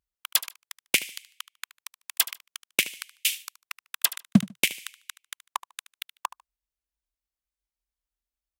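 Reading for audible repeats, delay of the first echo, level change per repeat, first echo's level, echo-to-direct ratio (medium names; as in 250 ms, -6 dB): 2, 74 ms, -12.5 dB, -17.0 dB, -17.0 dB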